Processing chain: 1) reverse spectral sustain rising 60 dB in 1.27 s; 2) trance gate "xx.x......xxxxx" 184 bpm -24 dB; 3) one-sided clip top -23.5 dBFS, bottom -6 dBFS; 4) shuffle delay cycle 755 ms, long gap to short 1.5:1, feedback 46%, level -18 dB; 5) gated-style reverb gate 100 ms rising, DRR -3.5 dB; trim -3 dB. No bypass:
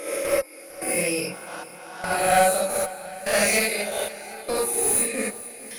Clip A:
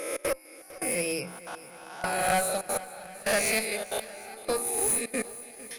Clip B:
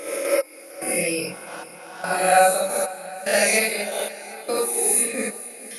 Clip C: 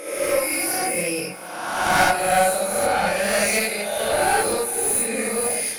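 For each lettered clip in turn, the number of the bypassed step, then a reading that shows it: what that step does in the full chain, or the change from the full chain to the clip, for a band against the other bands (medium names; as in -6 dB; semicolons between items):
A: 5, 1 kHz band -1.5 dB; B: 3, distortion -11 dB; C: 2, 1 kHz band +1.5 dB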